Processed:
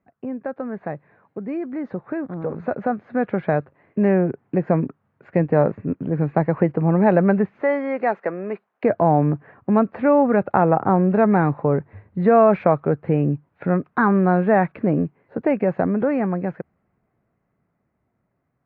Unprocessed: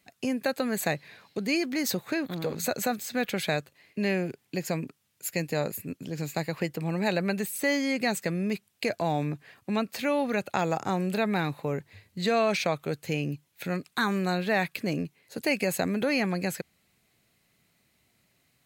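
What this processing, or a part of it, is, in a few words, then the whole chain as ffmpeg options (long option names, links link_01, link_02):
action camera in a waterproof case: -filter_complex "[0:a]asettb=1/sr,asplit=3[link_01][link_02][link_03];[link_01]atrim=end=7.624[link_04];[link_02]atrim=start=7.62:end=8.84,asetpts=PTS-STARTPTS,afade=type=in:duration=0.004:curve=qsin,afade=type=out:start_time=1.216:duration=0.004:curve=qsin,highpass=500[link_05];[link_03]atrim=start=8.836[link_06];[link_04][link_05]acrossfade=duration=0.004:curve1=hsin:curve2=qsin[link_07];[link_07][link_06]acrossfade=duration=0.004:curve1=qsin:curve2=hsin,lowpass=frequency=1400:width=0.5412,lowpass=frequency=1400:width=1.3066,dynaudnorm=framelen=310:gausssize=21:maxgain=14.5dB" -ar 16000 -c:a aac -b:a 48k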